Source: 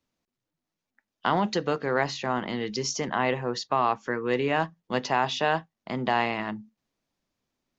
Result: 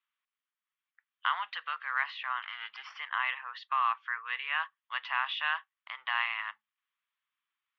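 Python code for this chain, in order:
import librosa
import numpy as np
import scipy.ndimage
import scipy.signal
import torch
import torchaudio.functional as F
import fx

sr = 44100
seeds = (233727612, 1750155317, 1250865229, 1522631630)

y = fx.lower_of_two(x, sr, delay_ms=0.39, at=(2.42, 2.99))
y = scipy.signal.sosfilt(scipy.signal.ellip(3, 1.0, 60, [1100.0, 3300.0], 'bandpass', fs=sr, output='sos'), y)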